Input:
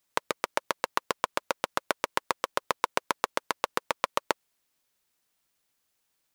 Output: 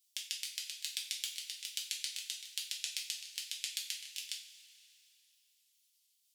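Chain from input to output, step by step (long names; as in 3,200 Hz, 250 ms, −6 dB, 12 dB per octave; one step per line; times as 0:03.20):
pitch shifter swept by a sawtooth −7 semitones, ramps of 409 ms
inverse Chebyshev high-pass filter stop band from 1,200 Hz, stop band 50 dB
coupled-rooms reverb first 0.36 s, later 3 s, from −18 dB, DRR −2 dB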